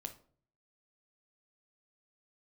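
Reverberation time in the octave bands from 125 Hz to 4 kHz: 0.80, 0.60, 0.55, 0.45, 0.35, 0.30 s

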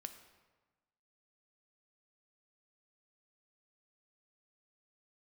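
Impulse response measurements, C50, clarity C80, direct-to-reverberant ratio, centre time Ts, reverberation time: 10.0 dB, 11.5 dB, 7.5 dB, 16 ms, 1.3 s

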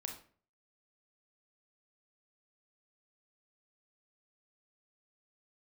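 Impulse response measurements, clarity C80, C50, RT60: 12.5 dB, 7.5 dB, 0.45 s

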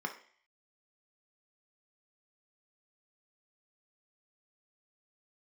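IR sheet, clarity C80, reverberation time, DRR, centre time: 15.0 dB, 0.50 s, 3.5 dB, 12 ms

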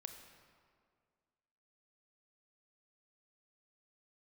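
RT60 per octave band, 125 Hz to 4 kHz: 2.0, 2.2, 2.1, 2.0, 1.7, 1.3 s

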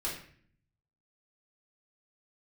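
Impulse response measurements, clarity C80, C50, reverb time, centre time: 9.0 dB, 4.5 dB, 0.55 s, 36 ms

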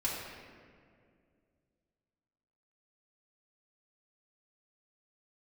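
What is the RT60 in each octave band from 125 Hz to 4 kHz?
2.9, 2.8, 2.5, 1.9, 1.8, 1.2 s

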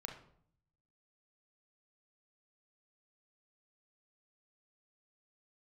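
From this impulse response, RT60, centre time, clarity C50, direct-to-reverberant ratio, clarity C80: 0.60 s, 26 ms, 6.5 dB, 2.0 dB, 11.0 dB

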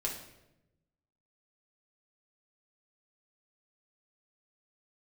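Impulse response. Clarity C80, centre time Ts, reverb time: 9.0 dB, 31 ms, 0.90 s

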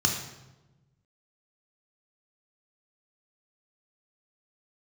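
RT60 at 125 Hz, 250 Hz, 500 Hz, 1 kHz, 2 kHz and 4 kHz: 1.7, 1.5, 1.2, 0.95, 0.85, 0.75 s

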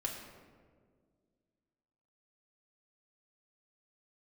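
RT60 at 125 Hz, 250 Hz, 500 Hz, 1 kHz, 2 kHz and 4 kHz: 2.3, 2.6, 2.2, 1.5, 1.2, 0.85 s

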